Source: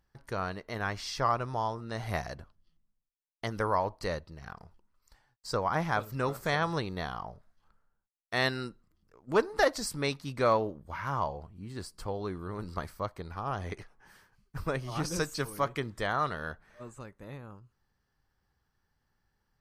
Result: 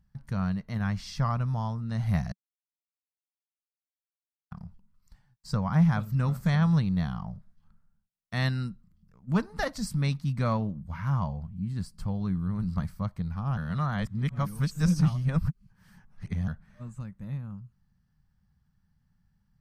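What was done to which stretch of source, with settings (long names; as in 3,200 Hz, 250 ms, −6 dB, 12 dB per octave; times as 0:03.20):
0:02.32–0:04.51: silence
0:13.57–0:16.48: reverse
whole clip: low shelf with overshoot 260 Hz +11.5 dB, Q 3; level −4 dB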